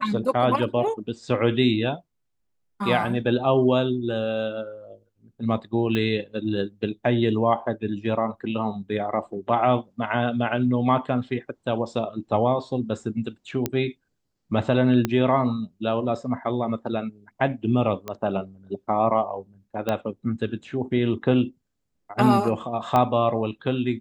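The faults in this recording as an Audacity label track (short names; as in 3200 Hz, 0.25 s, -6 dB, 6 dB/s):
5.950000	5.950000	pop -14 dBFS
13.660000	13.660000	pop -9 dBFS
15.050000	15.050000	pop -9 dBFS
18.080000	18.080000	pop -17 dBFS
19.890000	19.890000	pop -12 dBFS
22.960000	22.960000	pop -10 dBFS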